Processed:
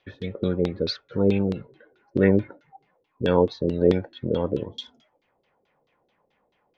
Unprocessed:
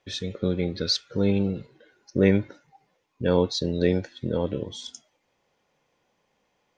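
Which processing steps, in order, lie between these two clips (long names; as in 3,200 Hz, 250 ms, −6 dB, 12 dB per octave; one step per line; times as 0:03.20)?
auto-filter low-pass saw down 4.6 Hz 360–4,100 Hz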